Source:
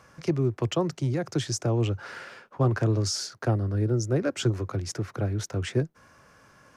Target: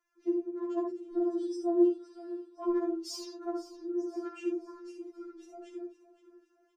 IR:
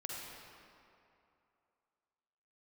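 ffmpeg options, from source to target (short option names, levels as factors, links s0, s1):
-filter_complex "[0:a]afwtdn=0.0178,asettb=1/sr,asplit=3[s0][s1][s2];[s0]atrim=end=1.134[s3];[s1]atrim=start=1.13:end=2.71,asetpts=PTS-STARTPTS,afade=t=in:d=0.004:c=qsin,afade=t=out:st=1.576:d=0.004:c=qsin,aecho=1:1:5.6:0.95,atrim=end_sample=69678[s4];[s2]atrim=start=2.706[s5];[s3][s4]acrossfade=d=0.004:c1=hsin:c2=qsin[s6];[s6][s5]acrossfade=d=0.004:c1=qsin:c2=hsin,asettb=1/sr,asplit=3[s7][s8][s9];[s7]atrim=end=4.674[s10];[s8]atrim=start=4.67:end=5.41,asetpts=PTS-STARTPTS,afade=t=in:d=0.004:c=qsin,afade=t=out:st=0.736:d=0.004:c=qsin,asuperstop=centerf=670:order=20:qfactor=1.3[s11];[s9]atrim=start=5.406[s12];[s10][s11]acrossfade=d=0.004:c1=hsin:c2=qsin[s13];[s13][s12]acrossfade=d=0.004:c1=qsin:c2=hsin,aecho=1:1:516|1032|1548|2064:0.158|0.0697|0.0307|0.0135[s14];[1:a]atrim=start_sample=2205,atrim=end_sample=3969[s15];[s14][s15]afir=irnorm=-1:irlink=0,afftfilt=real='re*4*eq(mod(b,16),0)':imag='im*4*eq(mod(b,16),0)':win_size=2048:overlap=0.75,volume=0.631"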